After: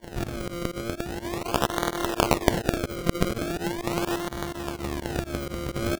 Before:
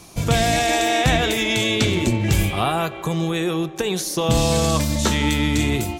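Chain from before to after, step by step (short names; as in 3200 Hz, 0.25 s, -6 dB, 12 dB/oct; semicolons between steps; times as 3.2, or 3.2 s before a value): sample sorter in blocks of 128 samples; 1.38–3.42 HPF 400 Hz 24 dB/oct; speakerphone echo 0.23 s, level -12 dB; limiter -9.5 dBFS, peak gain reduction 6 dB; resonant high shelf 6600 Hz +9.5 dB, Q 1.5; negative-ratio compressor -25 dBFS, ratio -1; decimation with a swept rate 34×, swing 100% 0.4 Hz; pump 126 bpm, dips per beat 2, -23 dB, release 73 ms; gain -3 dB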